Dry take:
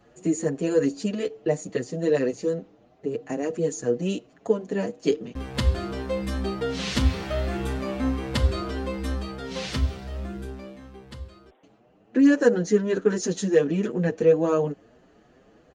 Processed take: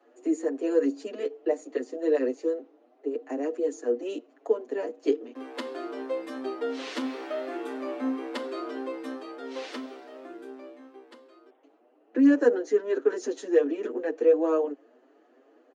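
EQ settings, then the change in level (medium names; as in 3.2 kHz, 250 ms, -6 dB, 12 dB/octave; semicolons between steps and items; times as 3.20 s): steep high-pass 250 Hz 96 dB/octave; treble shelf 2.6 kHz -12 dB; -1.5 dB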